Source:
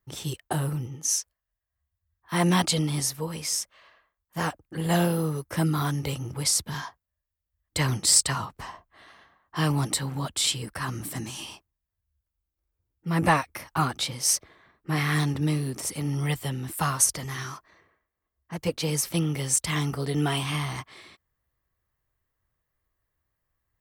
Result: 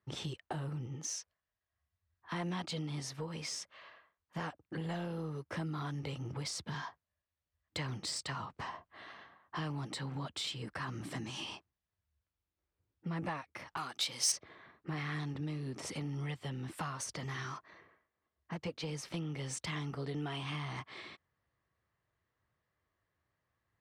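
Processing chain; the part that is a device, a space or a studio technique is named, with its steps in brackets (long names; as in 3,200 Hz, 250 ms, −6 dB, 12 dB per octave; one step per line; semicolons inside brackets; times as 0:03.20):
AM radio (band-pass filter 100–4,300 Hz; downward compressor 4 to 1, threshold −39 dBFS, peak gain reduction 19.5 dB; soft clipping −28.5 dBFS, distortion −24 dB)
0:13.77–0:14.32: RIAA equalisation recording
level +1 dB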